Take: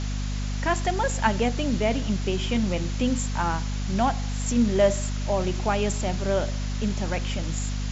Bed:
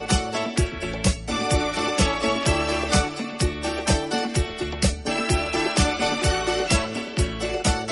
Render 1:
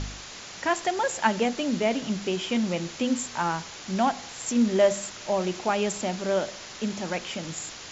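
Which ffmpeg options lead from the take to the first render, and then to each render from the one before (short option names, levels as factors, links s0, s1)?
-af "bandreject=f=50:t=h:w=4,bandreject=f=100:t=h:w=4,bandreject=f=150:t=h:w=4,bandreject=f=200:t=h:w=4,bandreject=f=250:t=h:w=4"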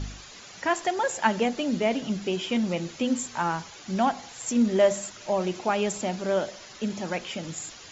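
-af "afftdn=nr=9:nf=-42"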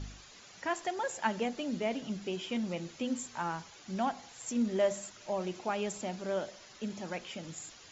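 -af "volume=0.376"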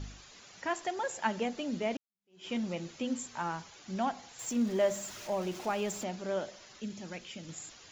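-filter_complex "[0:a]asettb=1/sr,asplit=3[s0][s1][s2];[s0]atrim=end=4.394[s3];[s1]atrim=start=4.39:end=6.04,asetpts=PTS-STARTPTS,afade=t=in:d=0.004:c=qsin,afade=t=out:st=1.646:d=0.004:c=qsin,aeval=exprs='val(0)+0.5*0.00631*sgn(val(0))':c=same[s4];[s2]atrim=start=6.036[s5];[s3][s4]acrossfade=d=0.004:c1=hsin:c2=qsin[s6];[s6][s5]acrossfade=d=0.004:c1=qsin:c2=hsin,asettb=1/sr,asplit=3[s7][s8][s9];[s7]atrim=end=6.804[s10];[s8]atrim=start=6.8:end=7.49,asetpts=PTS-STARTPTS,afade=t=in:d=0.004:c=qsin,afade=t=out:st=0.686:d=0.004:c=qsin,equalizer=f=820:w=0.63:g=-8[s11];[s9]atrim=start=7.486[s12];[s10][s11]acrossfade=d=0.004:c1=hsin:c2=qsin[s13];[s13][s12]acrossfade=d=0.004:c1=qsin:c2=hsin,asplit=2[s14][s15];[s14]atrim=end=1.97,asetpts=PTS-STARTPTS,afade=t=out:st=1.966:d=0.004:c=hsin[s16];[s15]atrim=start=1.97,asetpts=PTS-STARTPTS,afade=t=in:d=0.5:c=exp[s17];[s16][s17]concat=n=2:v=0:a=1"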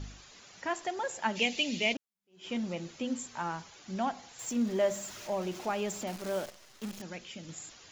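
-filter_complex "[0:a]asplit=3[s0][s1][s2];[s0]afade=t=out:st=1.35:d=0.02[s3];[s1]highshelf=f=1900:t=q:w=3:g=9.5,afade=t=in:st=1.35:d=0.02,afade=t=out:st=1.92:d=0.02[s4];[s2]afade=t=in:st=1.92:d=0.02[s5];[s3][s4][s5]amix=inputs=3:normalize=0,asettb=1/sr,asplit=3[s6][s7][s8];[s6]atrim=end=6.074[s9];[s7]atrim=start=6.07:end=7.02,asetpts=PTS-STARTPTS,afade=t=in:d=0.004:c=qsin,afade=t=out:st=0.946:d=0.004:c=qsin,acrusher=bits=8:dc=4:mix=0:aa=0.000001[s10];[s8]atrim=start=7.016[s11];[s9][s10]acrossfade=d=0.004:c1=hsin:c2=qsin[s12];[s12][s11]acrossfade=d=0.004:c1=qsin:c2=hsin"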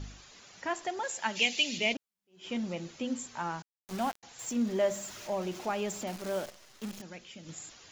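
-filter_complex "[0:a]asettb=1/sr,asplit=3[s0][s1][s2];[s0]atrim=end=1.034[s3];[s1]atrim=start=1.03:end=1.78,asetpts=PTS-STARTPTS,afade=t=in:d=0.004:c=qsin,afade=t=out:st=0.746:d=0.004:c=qsin,tiltshelf=f=1400:g=-5[s4];[s2]atrim=start=1.776[s5];[s3][s4]acrossfade=d=0.004:c1=hsin:c2=qsin[s6];[s6][s5]acrossfade=d=0.004:c1=qsin:c2=hsin,asettb=1/sr,asplit=3[s7][s8][s9];[s7]atrim=end=3.624[s10];[s8]atrim=start=3.62:end=4.23,asetpts=PTS-STARTPTS,afade=t=in:d=0.004:c=qsin,afade=t=out:st=0.606:d=0.004:c=qsin,aeval=exprs='val(0)*gte(abs(val(0)),0.0141)':c=same[s11];[s9]atrim=start=4.226[s12];[s10][s11]acrossfade=d=0.004:c1=hsin:c2=qsin[s13];[s13][s12]acrossfade=d=0.004:c1=qsin:c2=hsin,asplit=3[s14][s15][s16];[s14]atrim=end=7.012[s17];[s15]atrim=start=7.008:end=7.462,asetpts=PTS-STARTPTS,volume=0.668[s18];[s16]atrim=start=7.458[s19];[s17][s18]acrossfade=d=0.004:c1=hsin:c2=hsin[s20];[s20][s19]acrossfade=d=0.004:c1=hsin:c2=hsin"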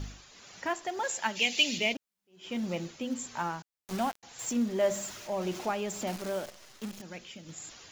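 -filter_complex "[0:a]tremolo=f=1.8:d=0.38,asplit=2[s0][s1];[s1]acrusher=bits=5:mode=log:mix=0:aa=0.000001,volume=0.473[s2];[s0][s2]amix=inputs=2:normalize=0"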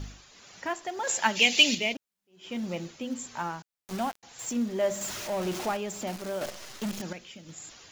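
-filter_complex "[0:a]asettb=1/sr,asplit=3[s0][s1][s2];[s0]atrim=end=1.074[s3];[s1]atrim=start=1.07:end=1.75,asetpts=PTS-STARTPTS,afade=t=in:d=0.004:c=qsin,afade=t=out:st=0.676:d=0.004:c=qsin,acontrast=59[s4];[s2]atrim=start=1.746[s5];[s3][s4]acrossfade=d=0.004:c1=hsin:c2=qsin[s6];[s6][s5]acrossfade=d=0.004:c1=qsin:c2=hsin,asettb=1/sr,asplit=3[s7][s8][s9];[s7]atrim=end=5.014[s10];[s8]atrim=start=5.01:end=5.77,asetpts=PTS-STARTPTS,afade=t=in:d=0.004:c=qsin,afade=t=out:st=0.756:d=0.004:c=qsin,aeval=exprs='val(0)+0.5*0.0168*sgn(val(0))':c=same[s11];[s9]atrim=start=5.766[s12];[s10][s11]acrossfade=d=0.004:c1=hsin:c2=qsin[s13];[s13][s12]acrossfade=d=0.004:c1=qsin:c2=hsin,asettb=1/sr,asplit=3[s14][s15][s16];[s14]atrim=end=6.414[s17];[s15]atrim=start=6.41:end=7.13,asetpts=PTS-STARTPTS,afade=t=in:d=0.004:c=qsin,afade=t=out:st=0.716:d=0.004:c=qsin,aeval=exprs='0.0422*sin(PI/2*2*val(0)/0.0422)':c=same[s18];[s16]atrim=start=7.126[s19];[s17][s18]acrossfade=d=0.004:c1=hsin:c2=qsin[s20];[s20][s19]acrossfade=d=0.004:c1=qsin:c2=hsin"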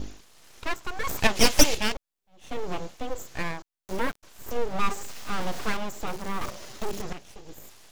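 -filter_complex "[0:a]asplit=2[s0][s1];[s1]adynamicsmooth=sensitivity=3:basefreq=870,volume=1[s2];[s0][s2]amix=inputs=2:normalize=0,aeval=exprs='abs(val(0))':c=same"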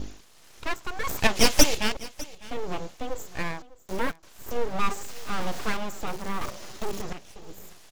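-af "aecho=1:1:602:0.106"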